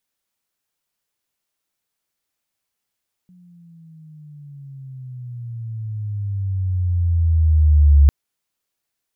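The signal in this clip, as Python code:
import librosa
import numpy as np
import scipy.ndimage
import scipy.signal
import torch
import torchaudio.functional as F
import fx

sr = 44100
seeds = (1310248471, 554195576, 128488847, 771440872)

y = fx.riser_tone(sr, length_s=4.8, level_db=-6.5, wave='sine', hz=182.0, rise_st=-16.5, swell_db=39.0)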